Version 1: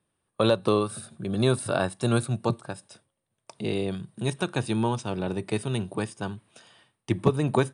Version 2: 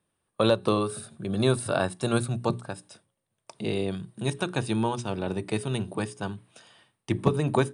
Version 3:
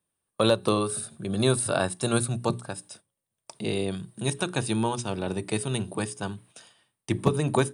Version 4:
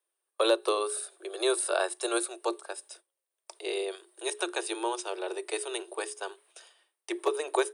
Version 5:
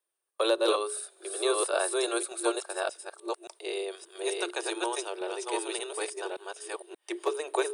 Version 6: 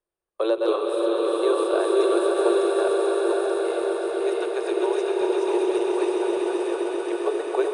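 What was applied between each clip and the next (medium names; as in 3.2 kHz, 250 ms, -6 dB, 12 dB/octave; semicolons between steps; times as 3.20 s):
hum notches 60/120/180/240/300/360/420 Hz
gate -54 dBFS, range -8 dB; treble shelf 6.5 kHz +11.5 dB
Chebyshev high-pass 340 Hz, order 8; trim -1.5 dB
chunks repeated in reverse 579 ms, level -1.5 dB; trim -1.5 dB
tilt EQ -4 dB/octave; echo with a slow build-up 131 ms, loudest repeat 5, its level -8 dB; swelling reverb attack 610 ms, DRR 2 dB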